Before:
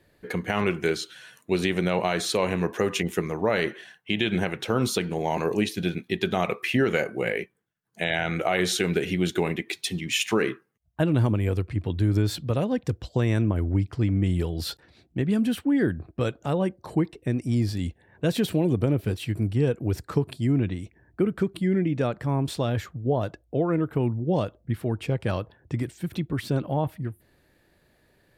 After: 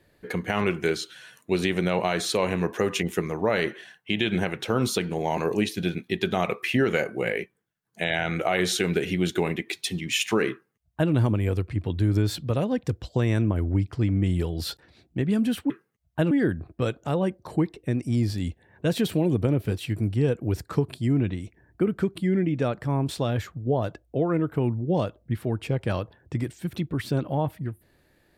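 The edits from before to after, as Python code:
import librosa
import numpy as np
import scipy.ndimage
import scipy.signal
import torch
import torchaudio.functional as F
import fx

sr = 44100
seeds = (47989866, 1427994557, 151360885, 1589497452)

y = fx.edit(x, sr, fx.duplicate(start_s=10.51, length_s=0.61, to_s=15.7), tone=tone)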